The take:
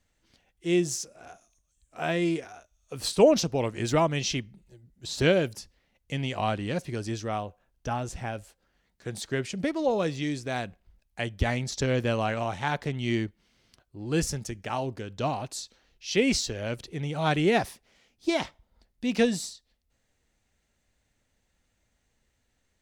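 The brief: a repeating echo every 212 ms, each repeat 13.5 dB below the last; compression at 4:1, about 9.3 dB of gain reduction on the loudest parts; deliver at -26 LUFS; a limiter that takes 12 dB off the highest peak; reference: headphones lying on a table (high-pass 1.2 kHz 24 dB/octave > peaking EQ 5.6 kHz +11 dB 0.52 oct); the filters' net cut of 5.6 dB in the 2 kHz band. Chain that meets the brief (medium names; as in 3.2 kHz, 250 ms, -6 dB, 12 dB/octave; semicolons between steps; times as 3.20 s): peaking EQ 2 kHz -7.5 dB; compression 4:1, threshold -25 dBFS; peak limiter -28 dBFS; high-pass 1.2 kHz 24 dB/octave; peaking EQ 5.6 kHz +11 dB 0.52 oct; feedback delay 212 ms, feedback 21%, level -13.5 dB; trim +11.5 dB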